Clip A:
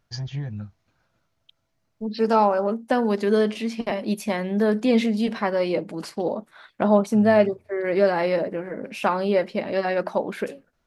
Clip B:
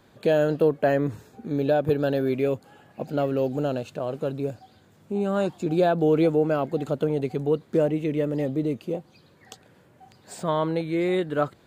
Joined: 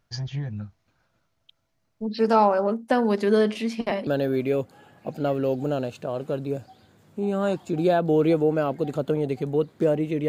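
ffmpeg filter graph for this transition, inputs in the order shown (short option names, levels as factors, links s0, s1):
-filter_complex "[0:a]apad=whole_dur=10.28,atrim=end=10.28,atrim=end=4.072[s0];[1:a]atrim=start=1.998:end=8.21[s1];[s0][s1]acrossfade=d=0.004:c1=hsin:c2=hsin"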